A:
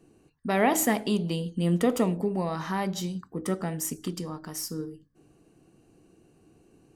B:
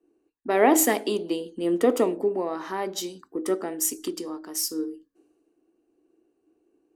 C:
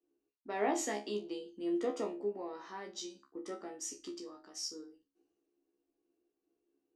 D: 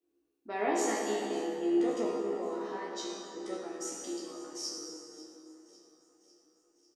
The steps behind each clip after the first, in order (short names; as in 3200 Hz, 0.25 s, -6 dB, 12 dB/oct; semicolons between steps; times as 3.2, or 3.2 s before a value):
resonant low shelf 220 Hz -13 dB, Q 3; in parallel at +3 dB: compressor, threshold -35 dBFS, peak gain reduction 17.5 dB; on the sum: three-band expander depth 70%; gain -3 dB
ladder low-pass 7200 Hz, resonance 35%; resonator 69 Hz, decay 0.22 s, harmonics all, mix 100%
feedback echo 0.549 s, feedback 60%, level -19 dB; plate-style reverb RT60 3.1 s, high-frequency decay 0.55×, DRR -3 dB